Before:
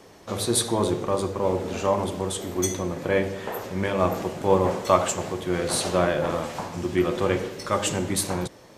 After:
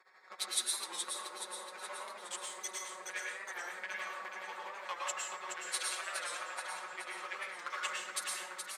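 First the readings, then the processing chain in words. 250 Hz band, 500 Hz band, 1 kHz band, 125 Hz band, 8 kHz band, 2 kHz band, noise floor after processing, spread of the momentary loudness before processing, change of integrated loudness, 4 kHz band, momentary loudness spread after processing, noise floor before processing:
−34.0 dB, −26.5 dB, −14.0 dB, below −40 dB, −8.5 dB, −5.5 dB, −51 dBFS, 8 LU, −14.0 dB, −7.5 dB, 8 LU, −49 dBFS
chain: adaptive Wiener filter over 15 samples
high-shelf EQ 12,000 Hz −10 dB
comb filter 5.4 ms, depth 95%
downward compressor 3 to 1, threshold −30 dBFS, peak gain reduction 14 dB
high-pass with resonance 1,900 Hz, resonance Q 1.5
amplitude tremolo 12 Hz, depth 90%
repeating echo 422 ms, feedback 56%, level −6 dB
dense smooth reverb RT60 0.77 s, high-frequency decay 0.6×, pre-delay 95 ms, DRR −2.5 dB
wow of a warped record 45 rpm, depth 100 cents

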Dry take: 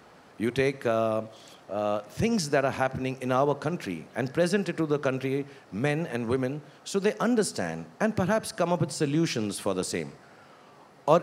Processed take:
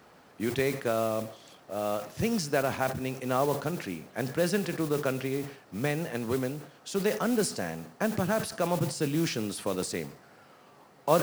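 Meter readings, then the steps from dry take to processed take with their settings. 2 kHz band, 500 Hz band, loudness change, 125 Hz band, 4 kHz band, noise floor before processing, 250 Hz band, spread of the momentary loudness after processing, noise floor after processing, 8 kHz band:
−2.5 dB, −2.5 dB, −2.5 dB, −2.0 dB, −1.0 dB, −54 dBFS, −2.5 dB, 8 LU, −57 dBFS, 0.0 dB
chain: noise that follows the level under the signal 17 dB
level that may fall only so fast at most 120 dB per second
level −3 dB

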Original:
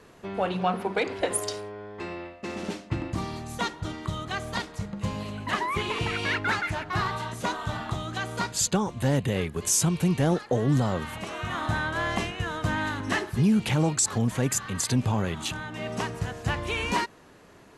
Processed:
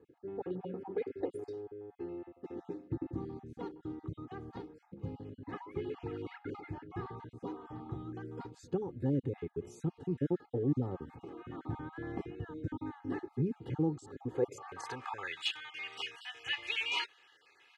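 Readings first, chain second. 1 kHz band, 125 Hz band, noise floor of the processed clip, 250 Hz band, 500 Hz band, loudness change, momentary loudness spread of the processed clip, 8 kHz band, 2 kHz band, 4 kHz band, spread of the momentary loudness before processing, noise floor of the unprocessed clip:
−16.0 dB, −12.0 dB, −67 dBFS, −9.5 dB, −8.0 dB, −11.5 dB, 12 LU, below −25 dB, −13.0 dB, −8.0 dB, 10 LU, −52 dBFS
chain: time-frequency cells dropped at random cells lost 25%
band-pass filter sweep 230 Hz → 2,700 Hz, 0:14.10–0:15.42
comb filter 2.4 ms, depth 91%

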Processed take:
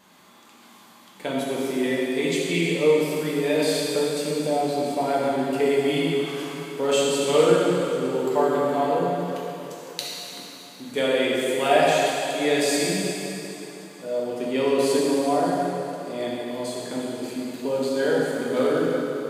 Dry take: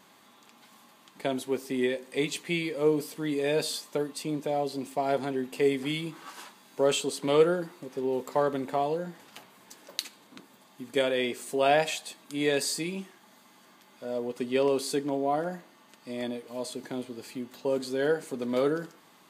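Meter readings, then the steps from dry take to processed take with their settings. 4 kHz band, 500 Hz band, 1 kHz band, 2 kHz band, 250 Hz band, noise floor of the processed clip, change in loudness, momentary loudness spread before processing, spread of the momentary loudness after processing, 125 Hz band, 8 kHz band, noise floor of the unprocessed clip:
+6.0 dB, +6.5 dB, +7.0 dB, +6.5 dB, +7.0 dB, −50 dBFS, +6.0 dB, 13 LU, 12 LU, +6.5 dB, +6.0 dB, −58 dBFS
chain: dense smooth reverb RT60 3.3 s, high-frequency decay 0.9×, DRR −5.5 dB

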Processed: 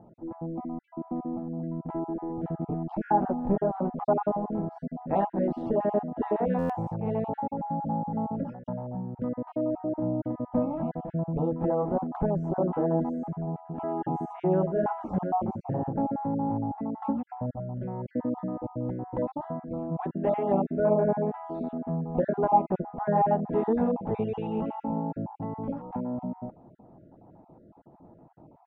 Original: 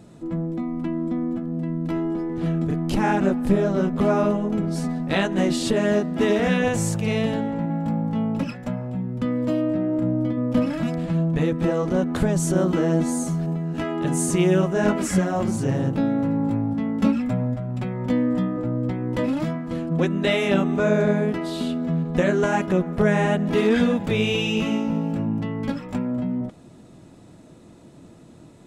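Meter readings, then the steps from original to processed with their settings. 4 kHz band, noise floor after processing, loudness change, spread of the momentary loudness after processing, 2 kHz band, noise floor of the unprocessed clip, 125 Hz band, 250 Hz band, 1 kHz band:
below −30 dB, −56 dBFS, −6.5 dB, 10 LU, −19.5 dB, −47 dBFS, −8.5 dB, −8.5 dB, +1.0 dB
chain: time-frequency cells dropped at random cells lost 30%
low-pass with resonance 830 Hz, resonance Q 4.3
buffer that repeats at 0:06.58, samples 512, times 9
level −7.5 dB

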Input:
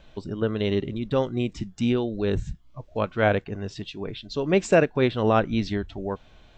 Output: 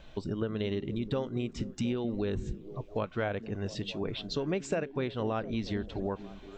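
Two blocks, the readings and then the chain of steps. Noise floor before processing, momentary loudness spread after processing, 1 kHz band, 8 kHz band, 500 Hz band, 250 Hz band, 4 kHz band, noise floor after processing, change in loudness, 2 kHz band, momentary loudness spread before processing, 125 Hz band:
−53 dBFS, 5 LU, −11.0 dB, −6.5 dB, −9.5 dB, −7.5 dB, −5.5 dB, −50 dBFS, −8.5 dB, −11.0 dB, 14 LU, −7.0 dB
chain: downward compressor 6 to 1, threshold −29 dBFS, peak gain reduction 15 dB
on a send: echo through a band-pass that steps 235 ms, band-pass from 200 Hz, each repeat 0.7 octaves, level −9.5 dB

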